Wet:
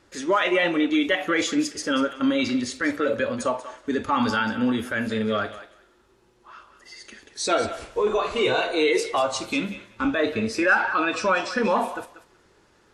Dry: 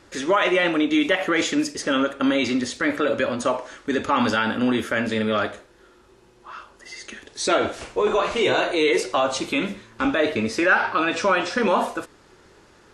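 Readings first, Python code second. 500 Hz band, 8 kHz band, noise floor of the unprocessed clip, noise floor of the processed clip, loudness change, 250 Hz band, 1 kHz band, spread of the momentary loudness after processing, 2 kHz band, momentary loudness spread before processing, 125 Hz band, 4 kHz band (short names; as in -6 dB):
-2.0 dB, -1.5 dB, -54 dBFS, -60 dBFS, -2.0 dB, -1.5 dB, -2.0 dB, 8 LU, -1.5 dB, 11 LU, -1.5 dB, -2.0 dB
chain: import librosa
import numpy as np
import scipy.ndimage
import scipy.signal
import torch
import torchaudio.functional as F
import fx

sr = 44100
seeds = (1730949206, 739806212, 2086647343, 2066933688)

y = fx.echo_thinned(x, sr, ms=188, feedback_pct=18, hz=580.0, wet_db=-10)
y = fx.noise_reduce_blind(y, sr, reduce_db=6)
y = y * librosa.db_to_amplitude(-1.0)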